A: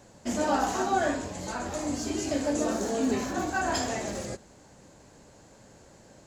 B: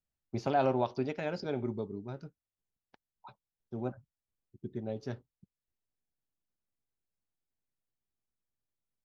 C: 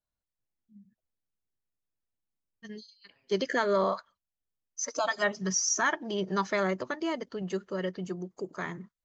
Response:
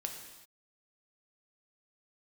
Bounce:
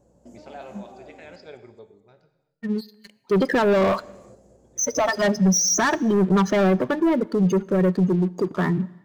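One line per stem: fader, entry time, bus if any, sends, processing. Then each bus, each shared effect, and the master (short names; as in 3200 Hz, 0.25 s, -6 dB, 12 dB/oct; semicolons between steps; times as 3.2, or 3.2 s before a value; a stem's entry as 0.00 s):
-14.5 dB, 0.00 s, muted 1.36–3.66, send -8.5 dB, echo send -4.5 dB, graphic EQ 500/2000/4000 Hz +8/-11/-9 dB; compressor 4:1, threshold -37 dBFS, peak gain reduction 16 dB; hum 60 Hz, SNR 16 dB
-14.5 dB, 0.00 s, send -4 dB, no echo send, graphic EQ 125/250/500/2000/4000 Hz -7/-11/+7/+10/+7 dB; auto duck -16 dB, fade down 0.90 s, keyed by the third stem
+2.5 dB, 0.00 s, send -14.5 dB, no echo send, spectral gate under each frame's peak -15 dB strong; bell 2300 Hz -6 dB 2.4 oct; sample leveller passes 3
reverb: on, pre-delay 3 ms
echo: feedback echo 0.215 s, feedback 45%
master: bell 170 Hz +5.5 dB 1.7 oct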